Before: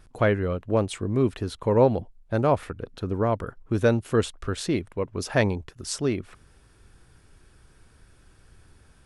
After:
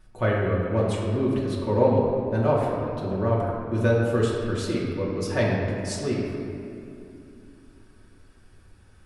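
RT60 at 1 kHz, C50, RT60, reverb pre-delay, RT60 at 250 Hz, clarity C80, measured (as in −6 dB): 2.5 s, 0.0 dB, 2.8 s, 3 ms, 3.7 s, 1.5 dB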